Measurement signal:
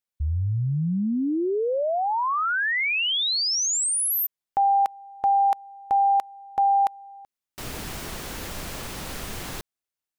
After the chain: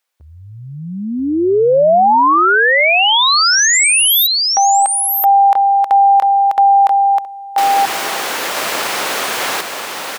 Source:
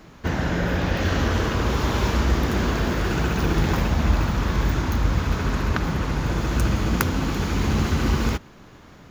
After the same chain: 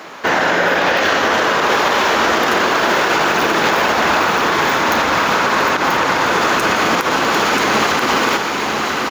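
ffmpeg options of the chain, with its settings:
-af "highpass=570,highshelf=f=4.2k:g=-7,acompressor=threshold=-29dB:ratio=2:attack=0.71:release=92:knee=1:detection=rms,aecho=1:1:984:0.596,alimiter=level_in=24dB:limit=-1dB:release=50:level=0:latency=1,volume=-4.5dB"

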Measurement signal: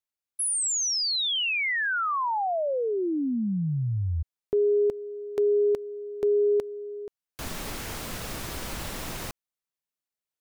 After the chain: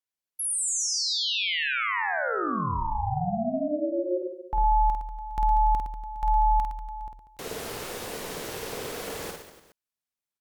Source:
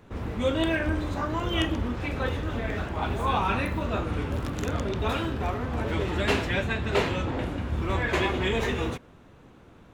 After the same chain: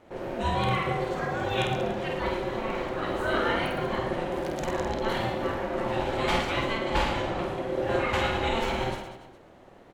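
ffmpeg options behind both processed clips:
-af "aeval=exprs='val(0)*sin(2*PI*450*n/s)':c=same,aecho=1:1:50|112.5|190.6|288.3|410.4:0.631|0.398|0.251|0.158|0.1"

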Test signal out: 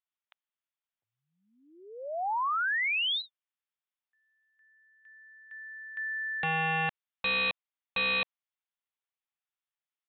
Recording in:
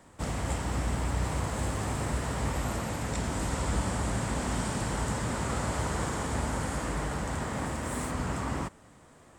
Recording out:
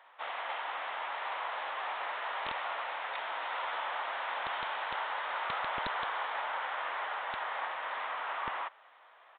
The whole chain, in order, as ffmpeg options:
-af "highpass=f=730:w=0.5412,highpass=f=730:w=1.3066,aresample=8000,aeval=exprs='(mod(23.7*val(0)+1,2)-1)/23.7':c=same,aresample=44100,volume=2.5dB"

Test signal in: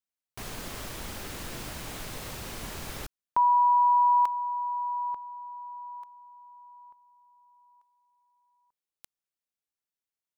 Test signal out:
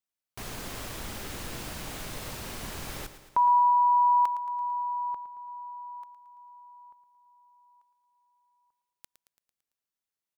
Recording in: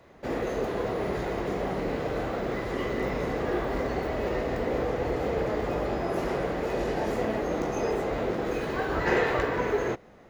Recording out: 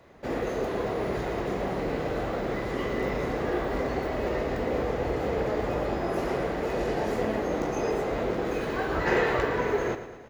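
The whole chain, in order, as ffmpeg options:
-af "aecho=1:1:112|224|336|448|560|672:0.251|0.143|0.0816|0.0465|0.0265|0.0151"

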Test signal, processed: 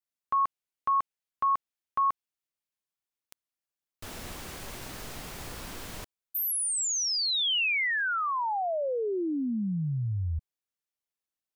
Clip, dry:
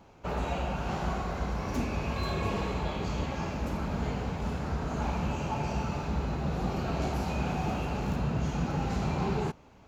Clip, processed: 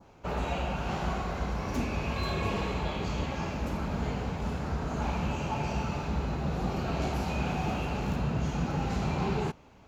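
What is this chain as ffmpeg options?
-af "adynamicequalizer=threshold=0.00631:dfrequency=2800:dqfactor=1.2:tfrequency=2800:tqfactor=1.2:attack=5:release=100:ratio=0.375:range=1.5:mode=boostabove:tftype=bell"

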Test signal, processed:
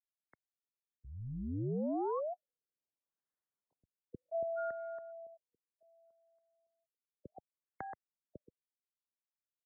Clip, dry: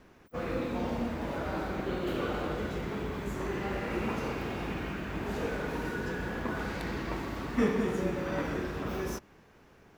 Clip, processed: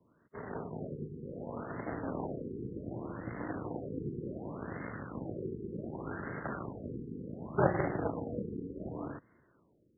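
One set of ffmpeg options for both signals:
-af "equalizer=f=870:t=o:w=0.21:g=-14,aeval=exprs='0.237*(cos(1*acos(clip(val(0)/0.237,-1,1)))-cos(1*PI/2))+0.106*(cos(3*acos(clip(val(0)/0.237,-1,1)))-cos(3*PI/2))+0.0841*(cos(4*acos(clip(val(0)/0.237,-1,1)))-cos(4*PI/2))+0.00841*(cos(6*acos(clip(val(0)/0.237,-1,1)))-cos(6*PI/2))':c=same,highpass=f=180:t=q:w=0.5412,highpass=f=180:t=q:w=1.307,lowpass=f=3.5k:t=q:w=0.5176,lowpass=f=3.5k:t=q:w=0.7071,lowpass=f=3.5k:t=q:w=1.932,afreqshift=-84,dynaudnorm=f=610:g=5:m=4dB,afftfilt=real='re*lt(b*sr/1024,470*pow(2200/470,0.5+0.5*sin(2*PI*0.67*pts/sr)))':imag='im*lt(b*sr/1024,470*pow(2200/470,0.5+0.5*sin(2*PI*0.67*pts/sr)))':win_size=1024:overlap=0.75,volume=1dB"

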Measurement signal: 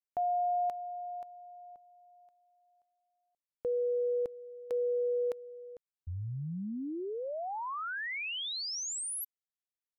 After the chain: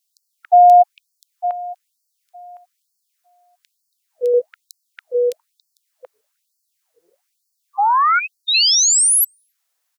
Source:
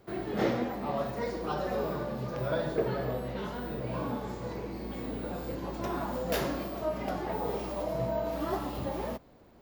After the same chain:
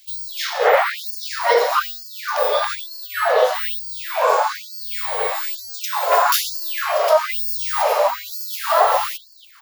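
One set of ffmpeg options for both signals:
-filter_complex "[0:a]acrossover=split=430|3000[a][b][c];[a]adelay=80[d];[b]adelay=280[e];[d][e][c]amix=inputs=3:normalize=0,alimiter=level_in=24.5dB:limit=-1dB:release=50:level=0:latency=1,afftfilt=real='re*gte(b*sr/1024,400*pow(4300/400,0.5+0.5*sin(2*PI*1.1*pts/sr)))':imag='im*gte(b*sr/1024,400*pow(4300/400,0.5+0.5*sin(2*PI*1.1*pts/sr)))':win_size=1024:overlap=0.75,volume=-1dB"

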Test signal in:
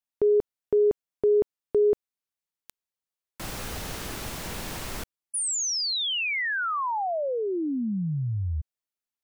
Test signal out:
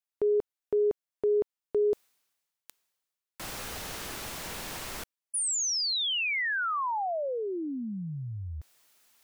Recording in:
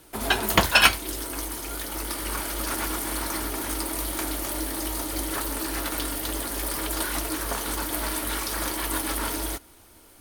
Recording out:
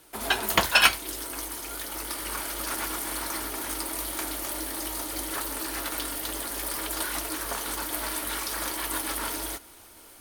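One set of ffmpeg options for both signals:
-af "areverse,acompressor=mode=upward:threshold=-36dB:ratio=2.5:attack=0.8:release=559:knee=2.83:detection=peak,areverse,lowshelf=f=330:g=-8,volume=-1.5dB"

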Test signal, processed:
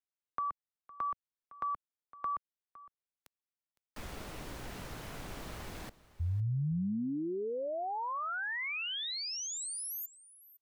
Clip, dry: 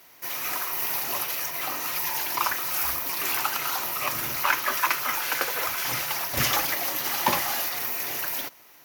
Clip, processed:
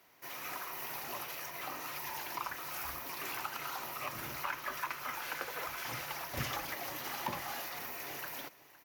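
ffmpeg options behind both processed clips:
-filter_complex "[0:a]highshelf=f=3.4k:g=-8,acrossover=split=170[a][b];[b]acompressor=threshold=-29dB:ratio=2.5[c];[a][c]amix=inputs=2:normalize=0,asplit=2[d][e];[e]aecho=0:1:510:0.112[f];[d][f]amix=inputs=2:normalize=0,volume=-7.5dB"

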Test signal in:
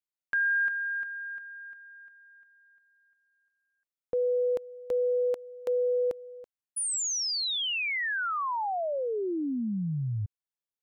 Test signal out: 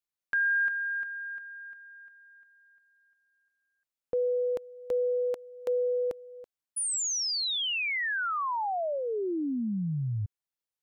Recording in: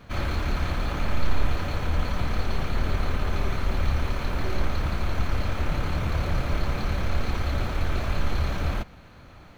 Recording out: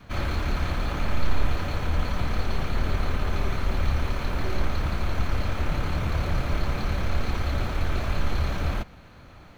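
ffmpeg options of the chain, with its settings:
-af "adynamicequalizer=threshold=0.00708:dfrequency=520:dqfactor=7.3:tfrequency=520:tqfactor=7.3:attack=5:release=100:ratio=0.375:range=3:mode=cutabove:tftype=bell"

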